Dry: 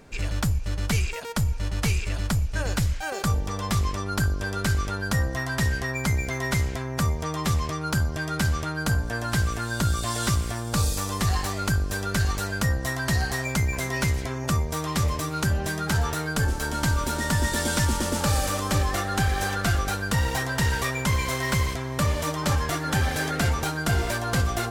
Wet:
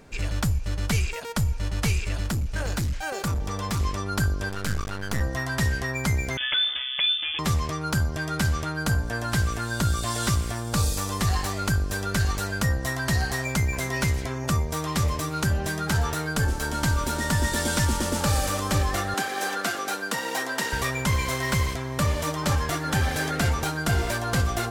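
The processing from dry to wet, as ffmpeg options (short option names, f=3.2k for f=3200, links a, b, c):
-filter_complex "[0:a]asettb=1/sr,asplit=3[a][b][c];[a]atrim=end=2.234[d];[b]atrim=start=2.23:end=3.8,asetpts=PTS-STARTPTS,afade=t=in:d=0.004:c=qsin,afade=t=out:st=1.566:d=0.004:c=qsin,volume=23dB,asoftclip=hard,volume=-23dB[e];[c]atrim=start=3.796[f];[d][e]acrossfade=d=0.004:c1=hsin:c2=qsin[g];[g][f]acrossfade=d=0.004:c1=qsin:c2=hsin,asettb=1/sr,asplit=3[h][i][j];[h]atrim=end=4.494[k];[i]atrim=start=4.49:end=5.21,asetpts=PTS-STARTPTS,afade=t=in:d=0.004:c=qsin,afade=t=out:st=0.716:d=0.004:c=qsin,aeval=exprs='max(val(0),0)':c=same[l];[j]atrim=start=5.206[m];[k][l]acrossfade=d=0.004:c1=hsin:c2=qsin[n];[n][m]acrossfade=d=0.004:c1=qsin:c2=hsin,asettb=1/sr,asplit=3[o][p][q];[o]atrim=end=6.374[r];[p]atrim=start=6.37:end=7.39,asetpts=PTS-STARTPTS,afade=t=in:d=0.004:c=qsin,afade=t=out:st=1.016:d=0.004:c=qsin,lowpass=f=3.1k:t=q:w=0.5098,lowpass=f=3.1k:t=q:w=0.6013,lowpass=f=3.1k:t=q:w=0.9,lowpass=f=3.1k:t=q:w=2.563,afreqshift=-3600[s];[q]atrim=start=7.386[t];[r][s]acrossfade=d=0.004:c1=hsin:c2=qsin[u];[u][t]acrossfade=d=0.004:c1=qsin:c2=hsin,asettb=1/sr,asplit=3[v][w][x];[v]atrim=end=19.144[y];[w]atrim=start=19.14:end=20.73,asetpts=PTS-STARTPTS,afade=t=in:d=0.004:c=qsin,afade=t=out:st=1.586:d=0.004:c=qsin,highpass=f=240:w=0.5412,highpass=f=240:w=1.3066[z];[x]atrim=start=20.726[aa];[y][z]acrossfade=d=0.004:c1=hsin:c2=qsin[ab];[ab][aa]acrossfade=d=0.004:c1=qsin:c2=hsin,asettb=1/sr,asplit=3[ac][ad][ae];[ac]atrim=end=21.354[af];[ad]atrim=start=21.35:end=23.09,asetpts=PTS-STARTPTS,afade=t=in:d=0.004:c=qsin,afade=t=out:st=1.736:d=0.004:c=qsin,aeval=exprs='sgn(val(0))*max(abs(val(0))-0.00119,0)':c=same[ag];[ae]atrim=start=23.086[ah];[af][ag]acrossfade=d=0.004:c1=hsin:c2=qsin[ai];[ai][ah]acrossfade=d=0.004:c1=qsin:c2=hsin"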